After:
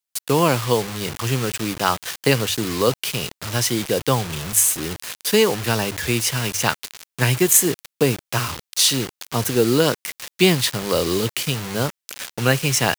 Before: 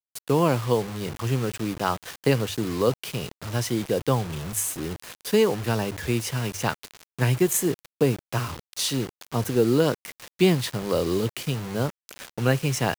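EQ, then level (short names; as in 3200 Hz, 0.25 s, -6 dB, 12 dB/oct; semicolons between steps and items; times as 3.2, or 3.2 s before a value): tilt shelf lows -4.5 dB, about 1300 Hz; +6.5 dB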